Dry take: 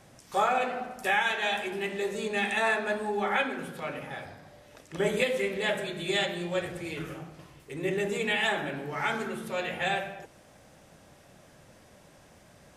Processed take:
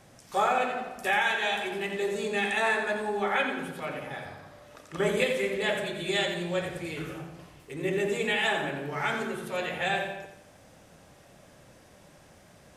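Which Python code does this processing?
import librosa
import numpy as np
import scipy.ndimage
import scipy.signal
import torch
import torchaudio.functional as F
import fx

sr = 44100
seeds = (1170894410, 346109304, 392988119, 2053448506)

y = fx.peak_eq(x, sr, hz=1200.0, db=9.0, octaves=0.41, at=(4.27, 5.1))
y = fx.echo_feedback(y, sr, ms=87, feedback_pct=40, wet_db=-8.0)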